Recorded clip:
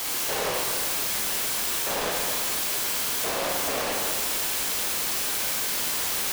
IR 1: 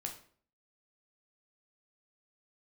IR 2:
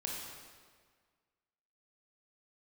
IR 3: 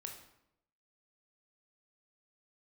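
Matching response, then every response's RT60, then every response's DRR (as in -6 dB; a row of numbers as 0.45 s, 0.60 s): 2; 0.50 s, 1.7 s, 0.80 s; 2.0 dB, -2.5 dB, 2.0 dB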